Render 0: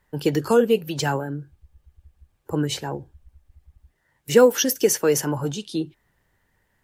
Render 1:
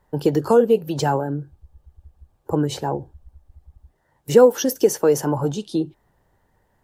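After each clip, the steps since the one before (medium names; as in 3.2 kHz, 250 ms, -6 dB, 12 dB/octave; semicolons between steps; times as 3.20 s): FFT filter 230 Hz 0 dB, 820 Hz +4 dB, 2.2 kHz -10 dB, 3.9 kHz -6 dB; in parallel at 0 dB: compression, threshold -24 dBFS, peak gain reduction 16 dB; on the sum: trim -1.5 dB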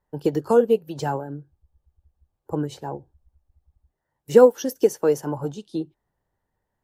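upward expansion 1.5:1, over -36 dBFS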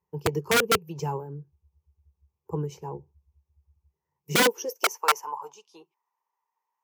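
rippled EQ curve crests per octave 0.78, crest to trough 14 dB; integer overflow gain 7.5 dB; high-pass sweep 91 Hz -> 950 Hz, 4.12–4.94 s; trim -8 dB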